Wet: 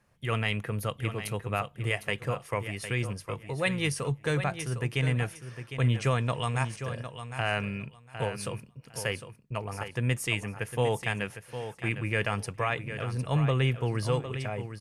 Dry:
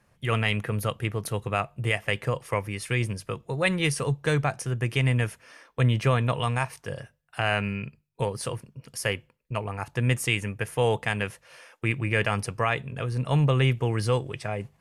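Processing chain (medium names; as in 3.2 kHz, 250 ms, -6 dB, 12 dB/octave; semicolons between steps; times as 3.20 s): 5.98–6.78 s: resonant low-pass 7.8 kHz, resonance Q 2.4; feedback delay 756 ms, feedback 18%, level -10 dB; trim -4 dB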